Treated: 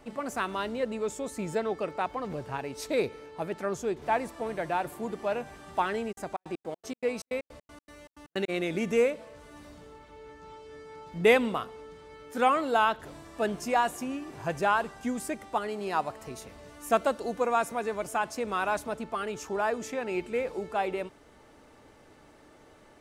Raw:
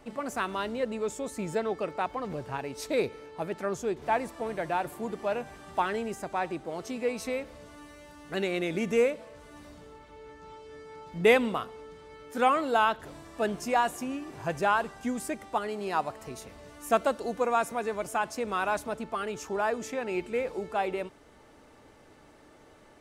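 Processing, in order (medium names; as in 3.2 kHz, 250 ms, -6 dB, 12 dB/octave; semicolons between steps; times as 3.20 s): 6.11–8.48 s: trance gate "x.xx.x.x." 158 bpm -60 dB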